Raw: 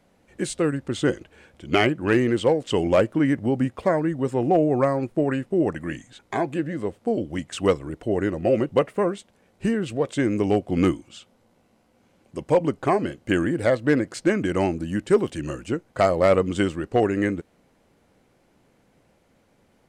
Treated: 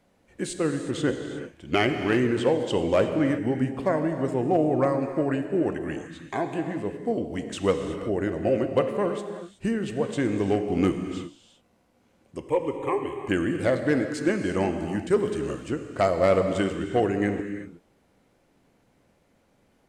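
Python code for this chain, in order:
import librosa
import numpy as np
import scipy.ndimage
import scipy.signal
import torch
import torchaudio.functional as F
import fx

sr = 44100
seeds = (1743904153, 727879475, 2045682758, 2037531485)

y = fx.fixed_phaser(x, sr, hz=1000.0, stages=8, at=(12.41, 13.25))
y = fx.rev_gated(y, sr, seeds[0], gate_ms=400, shape='flat', drr_db=6.0)
y = y * librosa.db_to_amplitude(-3.5)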